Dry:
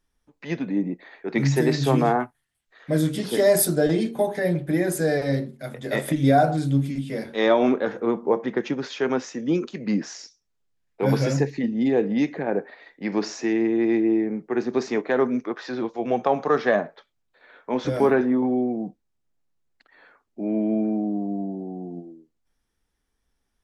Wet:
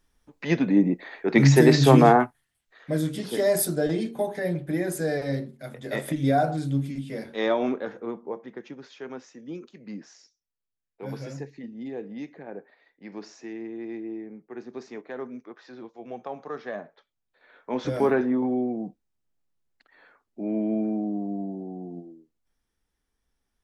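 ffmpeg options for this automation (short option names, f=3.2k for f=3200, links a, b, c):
-af "volume=16.5dB,afade=t=out:st=2.07:d=0.91:silence=0.334965,afade=t=out:st=7.35:d=1.09:silence=0.316228,afade=t=in:st=16.71:d=1.15:silence=0.266073"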